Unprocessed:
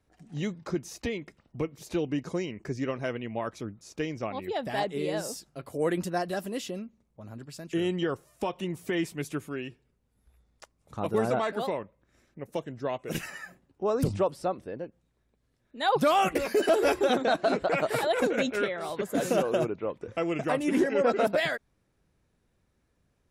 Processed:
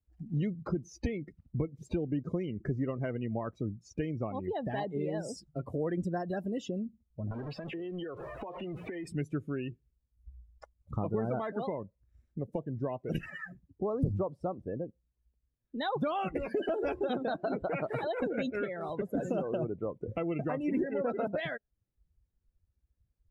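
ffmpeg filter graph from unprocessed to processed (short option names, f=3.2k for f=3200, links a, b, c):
-filter_complex "[0:a]asettb=1/sr,asplit=3[a][b][c];[a]atrim=end=7.314[d];[b]atrim=start=7.31:end=9.07,asetpts=PTS-STARTPTS,afade=t=in:d=0.004:c=qsin,afade=t=out:st=1.756:d=0.004:c=qsin,aeval=exprs='val(0)+0.5*0.0224*sgn(val(0))':c=same,acrossover=split=350 3700:gain=0.224 1 0.141[e][f][g];[e][f][g]amix=inputs=3:normalize=0,acompressor=threshold=-39dB:ratio=20:attack=3.2:release=140:knee=1:detection=peak[h];[c]atrim=start=9.066[i];[d][h]acrossfade=d=0.004:c1=hsin:c2=qsin[j];[j][i]acrossfade=d=0.004:c1=qsin:c2=hsin,acompressor=threshold=-41dB:ratio=2.5,lowshelf=f=220:g=10.5,afftdn=nr=25:nf=-44,volume=3dB"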